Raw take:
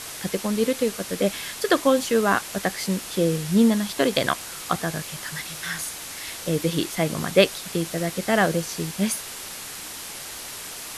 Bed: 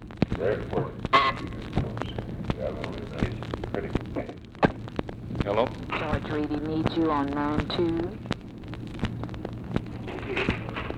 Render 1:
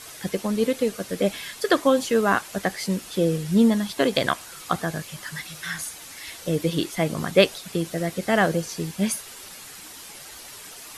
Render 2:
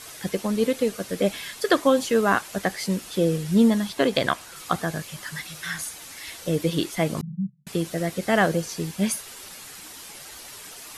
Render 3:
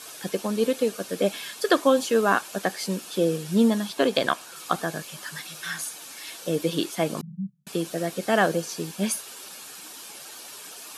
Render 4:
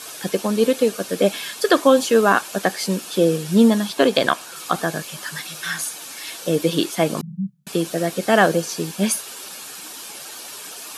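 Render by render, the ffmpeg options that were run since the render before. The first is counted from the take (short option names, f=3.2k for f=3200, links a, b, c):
-af "afftdn=nr=8:nf=-37"
-filter_complex "[0:a]asettb=1/sr,asplit=3[a][b][c];[a]atrim=end=3.894[d];[b]atrim=start=3.89:end=4.56,asetpts=PTS-STARTPTS,afade=t=in:d=0.004:c=qsin,afade=t=out:st=0.666:d=0.004:c=qsin,highshelf=f=5.5k:g=-4[e];[c]atrim=start=4.556[f];[d][e]acrossfade=d=0.004:c1=hsin:c2=qsin[g];[g][f]acrossfade=d=0.004:c1=qsin:c2=hsin,asettb=1/sr,asplit=3[h][i][j];[h]atrim=end=7.214[k];[i]atrim=start=7.21:end=7.67,asetpts=PTS-STARTPTS,afade=t=in:d=0.004:c=qsin,afade=t=out:st=0.456:d=0.004:c=qsin,asuperpass=centerf=160:order=12:qfactor=2.3[l];[j]atrim=start=7.666[m];[k][l]acrossfade=d=0.004:c1=hsin:c2=qsin[n];[n][m]acrossfade=d=0.004:c1=qsin:c2=hsin"
-af "highpass=210,bandreject=f=2k:w=7.1"
-af "volume=6dB,alimiter=limit=-2dB:level=0:latency=1"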